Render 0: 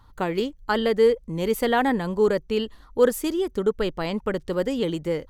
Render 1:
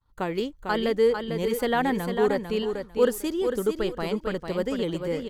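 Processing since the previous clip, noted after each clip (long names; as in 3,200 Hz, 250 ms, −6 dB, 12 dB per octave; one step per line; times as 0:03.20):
downward expander −43 dBFS
on a send: repeating echo 449 ms, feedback 19%, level −6.5 dB
on the sum: level −3 dB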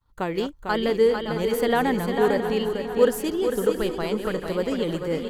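feedback delay that plays each chunk backwards 336 ms, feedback 61%, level −9.5 dB
level +1.5 dB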